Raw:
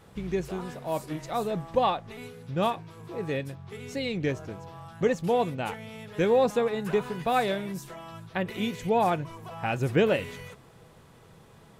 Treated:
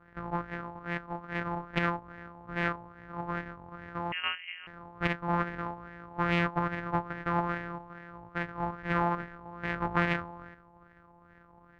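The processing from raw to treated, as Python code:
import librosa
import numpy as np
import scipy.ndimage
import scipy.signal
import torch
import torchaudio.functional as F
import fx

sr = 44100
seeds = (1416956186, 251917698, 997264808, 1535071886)

y = np.r_[np.sort(x[:len(x) // 256 * 256].reshape(-1, 256), axis=1).ravel(), x[len(x) // 256 * 256:]]
y = fx.filter_lfo_lowpass(y, sr, shape='sine', hz=2.4, low_hz=880.0, high_hz=1800.0, q=5.0)
y = fx.freq_invert(y, sr, carrier_hz=3000, at=(4.12, 4.67))
y = fx.doppler_dist(y, sr, depth_ms=0.46)
y = y * librosa.db_to_amplitude(-7.0)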